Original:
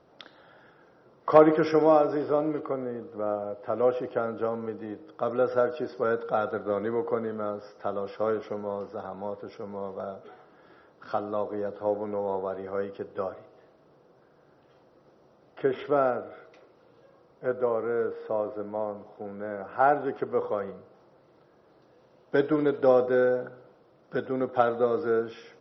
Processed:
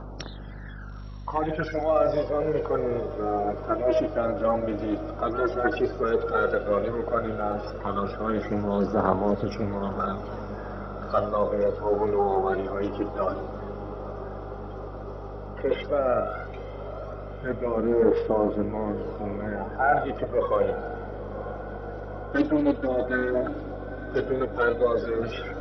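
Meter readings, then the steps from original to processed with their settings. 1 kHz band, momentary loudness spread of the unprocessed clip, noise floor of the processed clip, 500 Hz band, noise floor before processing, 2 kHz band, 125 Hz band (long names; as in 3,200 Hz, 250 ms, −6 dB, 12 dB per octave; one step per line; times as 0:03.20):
+2.0 dB, 15 LU, −38 dBFS, +1.0 dB, −60 dBFS, +5.0 dB, +8.0 dB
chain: spectral magnitudes quantised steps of 30 dB
reversed playback
downward compressor 6 to 1, threshold −32 dBFS, peak gain reduction 19.5 dB
reversed playback
phase shifter 0.11 Hz, delay 3.6 ms, feedback 67%
mains hum 50 Hz, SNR 12 dB
on a send: feedback delay with all-pass diffusion 933 ms, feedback 78%, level −14 dB
on the sum: highs frequency-modulated by the lows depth 0.21 ms
level +8 dB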